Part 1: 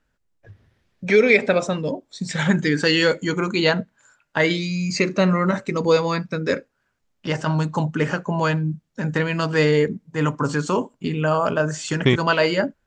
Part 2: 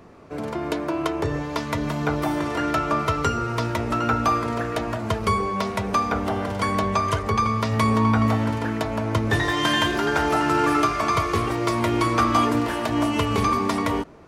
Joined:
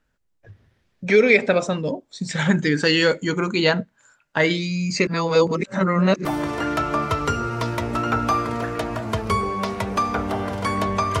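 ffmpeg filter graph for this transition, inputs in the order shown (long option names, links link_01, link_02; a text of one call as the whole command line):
ffmpeg -i cue0.wav -i cue1.wav -filter_complex "[0:a]apad=whole_dur=11.2,atrim=end=11.2,asplit=2[link_01][link_02];[link_01]atrim=end=5.072[link_03];[link_02]atrim=start=5.068:end=6.252,asetpts=PTS-STARTPTS,areverse[link_04];[1:a]atrim=start=2.218:end=7.17[link_05];[link_03][link_04]acrossfade=duration=0.004:curve1=hsin:curve2=hsin[link_06];[link_06][link_05]acrossfade=duration=0.004:curve1=hsin:curve2=hsin" out.wav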